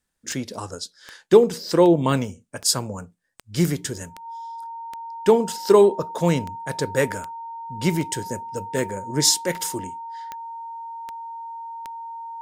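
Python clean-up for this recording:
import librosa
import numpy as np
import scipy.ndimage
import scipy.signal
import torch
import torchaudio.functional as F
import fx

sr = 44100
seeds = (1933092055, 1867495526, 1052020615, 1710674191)

y = fx.fix_declick_ar(x, sr, threshold=10.0)
y = fx.notch(y, sr, hz=920.0, q=30.0)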